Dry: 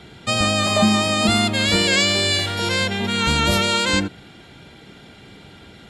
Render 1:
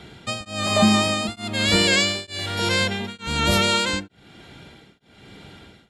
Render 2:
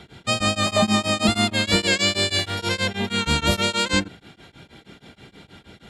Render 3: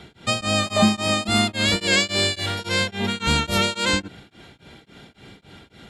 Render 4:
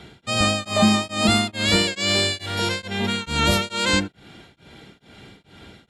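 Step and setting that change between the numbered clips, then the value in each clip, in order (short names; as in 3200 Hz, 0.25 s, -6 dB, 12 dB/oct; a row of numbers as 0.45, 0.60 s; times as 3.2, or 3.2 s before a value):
beating tremolo, nulls at: 1.1, 6.3, 3.6, 2.3 Hz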